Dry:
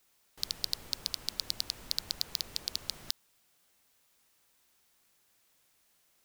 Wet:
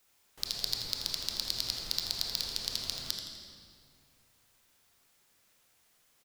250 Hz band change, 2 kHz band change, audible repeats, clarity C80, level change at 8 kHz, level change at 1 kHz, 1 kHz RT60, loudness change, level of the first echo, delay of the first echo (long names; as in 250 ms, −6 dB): +3.0 dB, +3.0 dB, 1, 3.0 dB, +2.0 dB, +3.0 dB, 2.2 s, +2.0 dB, −9.5 dB, 83 ms